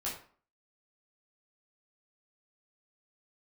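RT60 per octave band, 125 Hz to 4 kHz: 0.40 s, 0.50 s, 0.45 s, 0.50 s, 0.40 s, 0.30 s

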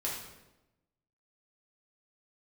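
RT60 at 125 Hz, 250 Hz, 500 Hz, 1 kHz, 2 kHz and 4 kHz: 1.2 s, 1.2 s, 1.1 s, 0.90 s, 0.80 s, 0.75 s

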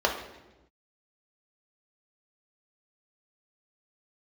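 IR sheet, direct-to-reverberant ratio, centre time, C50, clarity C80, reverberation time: 0.5 dB, 27 ms, 7.0 dB, 9.5 dB, 1.1 s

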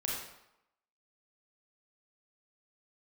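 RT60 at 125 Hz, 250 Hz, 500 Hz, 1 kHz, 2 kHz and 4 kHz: 0.65 s, 0.75 s, 0.80 s, 0.90 s, 0.75 s, 0.65 s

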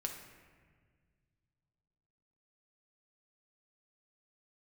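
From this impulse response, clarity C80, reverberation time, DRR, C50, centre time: 7.5 dB, 1.7 s, 1.5 dB, 5.5 dB, 37 ms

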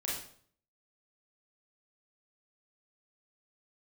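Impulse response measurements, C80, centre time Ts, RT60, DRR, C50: 7.0 dB, 49 ms, 0.55 s, -5.5 dB, 2.0 dB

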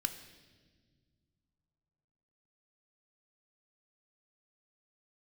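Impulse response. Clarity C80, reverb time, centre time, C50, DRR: 12.0 dB, no single decay rate, 15 ms, 10.5 dB, 7.5 dB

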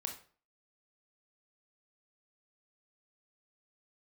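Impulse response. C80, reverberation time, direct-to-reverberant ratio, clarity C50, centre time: 14.0 dB, 0.45 s, 3.0 dB, 9.0 dB, 17 ms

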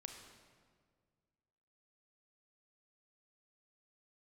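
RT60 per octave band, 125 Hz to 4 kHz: 2.3 s, 2.2 s, 2.0 s, 1.7 s, 1.4 s, 1.2 s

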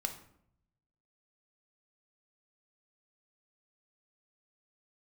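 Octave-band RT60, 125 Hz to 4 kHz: 1.3 s, 0.95 s, 0.75 s, 0.65 s, 0.55 s, 0.45 s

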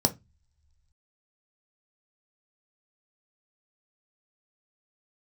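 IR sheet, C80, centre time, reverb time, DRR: 29.5 dB, 5 ms, no single decay rate, 6.5 dB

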